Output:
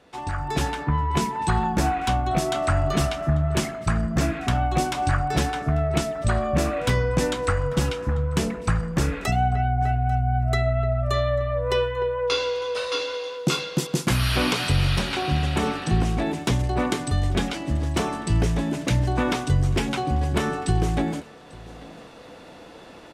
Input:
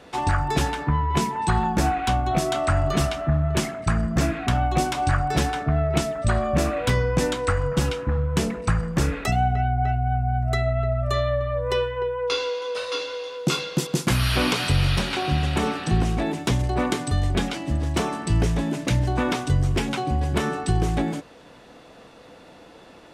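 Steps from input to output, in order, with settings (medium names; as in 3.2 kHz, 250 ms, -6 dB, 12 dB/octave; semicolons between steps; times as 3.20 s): on a send: delay 843 ms -23.5 dB; on the sum: level rider; trim -8.5 dB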